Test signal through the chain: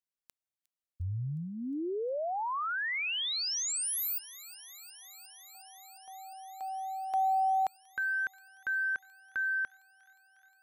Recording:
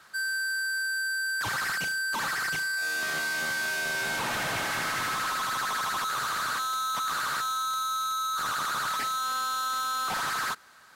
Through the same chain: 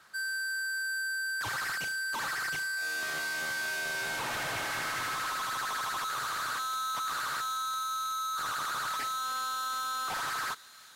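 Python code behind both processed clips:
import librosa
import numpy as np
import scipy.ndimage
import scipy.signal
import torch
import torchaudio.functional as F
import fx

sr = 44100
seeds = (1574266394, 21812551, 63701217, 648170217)

p1 = fx.dynamic_eq(x, sr, hz=200.0, q=2.8, threshold_db=-56.0, ratio=4.0, max_db=-7)
p2 = p1 + fx.echo_wet_highpass(p1, sr, ms=358, feedback_pct=83, hz=2400.0, wet_db=-18.5, dry=0)
y = F.gain(torch.from_numpy(p2), -4.0).numpy()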